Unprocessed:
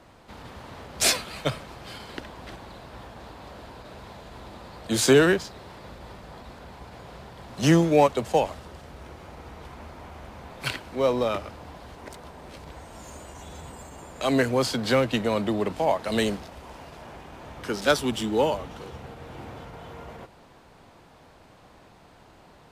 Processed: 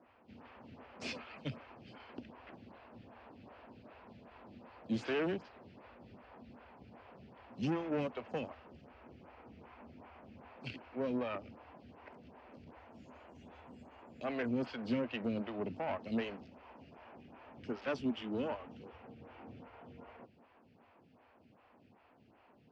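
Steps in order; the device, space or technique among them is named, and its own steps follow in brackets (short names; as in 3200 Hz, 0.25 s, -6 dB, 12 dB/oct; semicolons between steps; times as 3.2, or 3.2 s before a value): vibe pedal into a guitar amplifier (photocell phaser 2.6 Hz; tube stage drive 23 dB, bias 0.5; speaker cabinet 77–4300 Hz, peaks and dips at 94 Hz +5 dB, 240 Hz +9 dB, 2600 Hz +6 dB, 3800 Hz -9 dB); gain -8.5 dB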